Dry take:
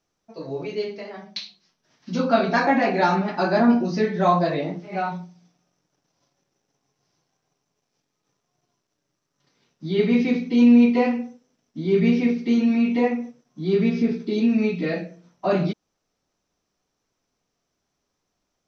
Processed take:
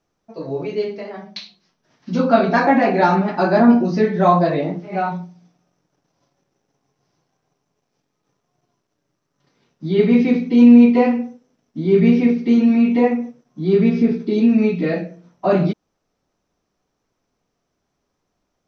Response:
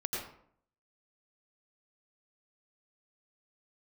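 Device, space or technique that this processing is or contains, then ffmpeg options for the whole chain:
behind a face mask: -af "highshelf=f=2.3k:g=-8,volume=5.5dB"

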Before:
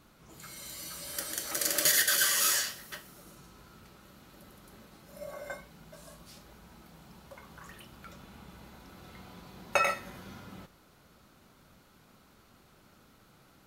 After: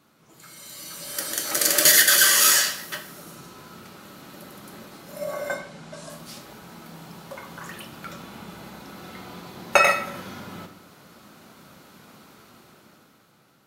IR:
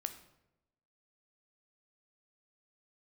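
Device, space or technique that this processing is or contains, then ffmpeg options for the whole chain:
far laptop microphone: -filter_complex "[0:a]asettb=1/sr,asplit=3[a][b][c];[a]atrim=end=5.544[d];[b]atrim=start=5.54:end=6.1,asetpts=PTS-STARTPTS,afade=t=in:d=0.004:c=qsin,afade=t=out:st=0.556:d=0.004:c=qsin,lowpass=f=9.3k:w=0.5412,lowpass=f=9.3k:w=1.3066[e];[c]atrim=start=6.096[f];[d][e]acrossfade=d=0.004:c1=hsin:c2=qsin[g];[g][f]acrossfade=d=0.004:c1=qsin:c2=hsin[h];[1:a]atrim=start_sample=2205[i];[h][i]afir=irnorm=-1:irlink=0,highpass=140,dynaudnorm=f=170:g=13:m=11.5dB,volume=1.5dB"

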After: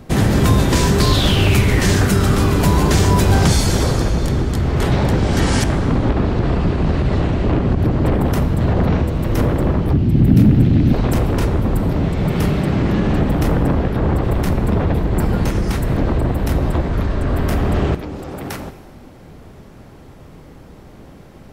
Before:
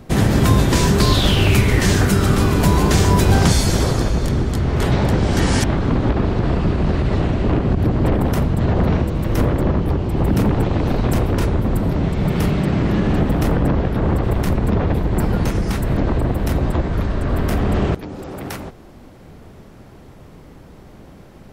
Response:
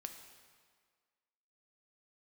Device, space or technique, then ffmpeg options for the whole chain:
saturated reverb return: -filter_complex "[0:a]asettb=1/sr,asplit=3[a][b][c];[a]atrim=end=9.934[d];[b]atrim=start=9.93:end=10.93,asetpts=PTS-STARTPTS,afade=t=in:d=0.004:c=qsin,afade=t=out:st=0.996:d=0.004:c=qsin,equalizer=f=125:t=o:w=1:g=7,equalizer=f=250:t=o:w=1:g=9,equalizer=f=500:t=o:w=1:g=-8,equalizer=f=1k:t=o:w=1:g=-12,equalizer=f=8k:t=o:w=1:g=-5[e];[c]atrim=start=10.926[f];[d][e]acrossfade=d=0.004:c1=hsin:c2=qsin[g];[g][f]acrossfade=d=0.004:c1=qsin:c2=hsin,asplit=2[h][i];[1:a]atrim=start_sample=2205[j];[i][j]afir=irnorm=-1:irlink=0,asoftclip=type=tanh:threshold=-12dB,volume=4dB[k];[h][k]amix=inputs=2:normalize=0,volume=-4.5dB"

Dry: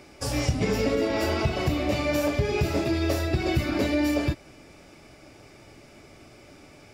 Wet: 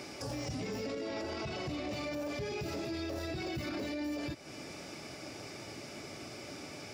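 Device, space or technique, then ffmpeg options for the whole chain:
broadcast voice chain: -filter_complex "[0:a]highpass=110,deesser=0.95,acompressor=threshold=-37dB:ratio=3,equalizer=f=5.3k:t=o:w=0.92:g=5.5,alimiter=level_in=10.5dB:limit=-24dB:level=0:latency=1:release=20,volume=-10.5dB,asettb=1/sr,asplit=3[a][b][c];[a]atrim=end=0.874[d];[b]atrim=start=0.87:end=1.93,asetpts=PTS-STARTPTS,afade=t=in:d=0.004:c=qsin,afade=t=out:st=1.056:d=0.004:c=qsin,lowpass=9.1k[e];[c]atrim=start=1.926[f];[d][e]acrossfade=d=0.004:c1=hsin:c2=qsin[g];[g][f]acrossfade=d=0.004:c1=qsin:c2=hsin,volume=4dB"

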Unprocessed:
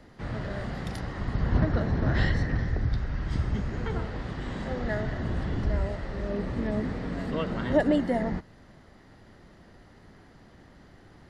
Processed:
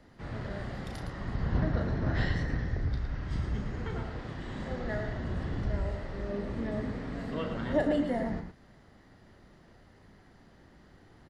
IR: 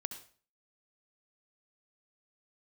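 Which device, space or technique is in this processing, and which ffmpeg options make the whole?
slapback doubling: -filter_complex "[0:a]asplit=3[a][b][c];[b]adelay=35,volume=-8dB[d];[c]adelay=112,volume=-7dB[e];[a][d][e]amix=inputs=3:normalize=0,volume=-5.5dB"

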